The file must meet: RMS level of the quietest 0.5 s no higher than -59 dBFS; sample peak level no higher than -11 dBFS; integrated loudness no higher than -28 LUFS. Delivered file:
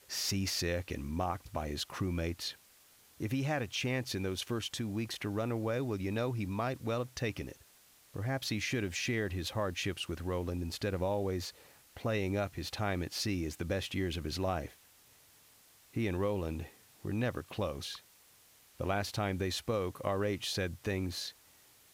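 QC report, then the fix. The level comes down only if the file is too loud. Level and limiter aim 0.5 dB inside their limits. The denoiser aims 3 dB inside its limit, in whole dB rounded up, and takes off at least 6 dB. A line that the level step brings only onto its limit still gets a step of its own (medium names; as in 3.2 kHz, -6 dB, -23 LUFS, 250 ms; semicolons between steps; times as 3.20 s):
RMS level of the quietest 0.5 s -63 dBFS: pass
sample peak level -20.0 dBFS: pass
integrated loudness -36.0 LUFS: pass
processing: none needed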